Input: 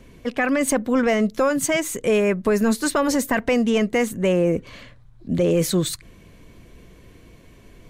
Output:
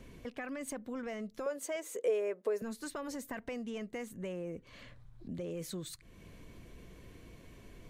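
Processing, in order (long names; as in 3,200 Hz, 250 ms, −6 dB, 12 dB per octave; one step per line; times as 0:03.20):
downward compressor 2.5 to 1, threshold −41 dBFS, peak gain reduction 16.5 dB
0:01.46–0:02.62: high-pass with resonance 470 Hz, resonance Q 4.3
level −5.5 dB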